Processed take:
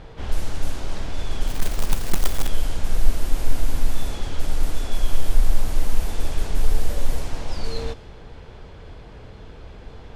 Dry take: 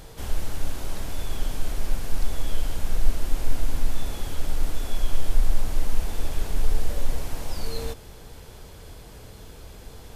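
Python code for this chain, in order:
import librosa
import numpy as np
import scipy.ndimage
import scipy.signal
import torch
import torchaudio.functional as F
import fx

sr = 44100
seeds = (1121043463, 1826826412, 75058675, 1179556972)

y = fx.env_lowpass(x, sr, base_hz=2700.0, full_db=-13.0)
y = fx.quant_float(y, sr, bits=2, at=(1.47, 2.48))
y = y * librosa.db_to_amplitude(3.0)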